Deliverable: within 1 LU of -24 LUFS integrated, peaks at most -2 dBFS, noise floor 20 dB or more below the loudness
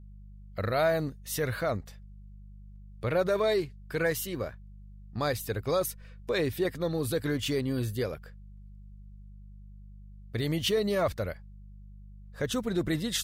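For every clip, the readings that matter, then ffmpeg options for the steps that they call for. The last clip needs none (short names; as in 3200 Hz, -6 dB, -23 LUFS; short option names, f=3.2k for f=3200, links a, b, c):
hum 50 Hz; harmonics up to 200 Hz; hum level -45 dBFS; loudness -30.5 LUFS; peak -16.5 dBFS; loudness target -24.0 LUFS
-> -af "bandreject=f=50:t=h:w=4,bandreject=f=100:t=h:w=4,bandreject=f=150:t=h:w=4,bandreject=f=200:t=h:w=4"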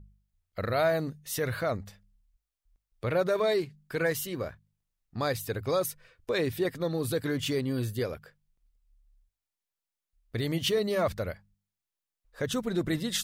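hum none; loudness -30.5 LUFS; peak -16.5 dBFS; loudness target -24.0 LUFS
-> -af "volume=6.5dB"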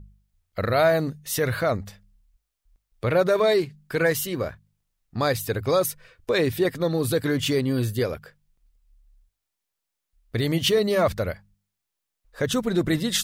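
loudness -24.0 LUFS; peak -10.0 dBFS; noise floor -83 dBFS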